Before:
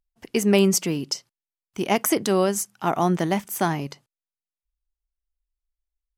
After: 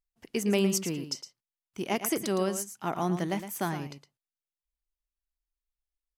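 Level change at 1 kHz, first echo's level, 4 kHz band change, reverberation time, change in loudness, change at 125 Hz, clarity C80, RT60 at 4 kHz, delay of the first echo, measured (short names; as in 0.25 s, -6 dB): -9.0 dB, -10.5 dB, -7.0 dB, none, -7.5 dB, -7.0 dB, none, none, 0.112 s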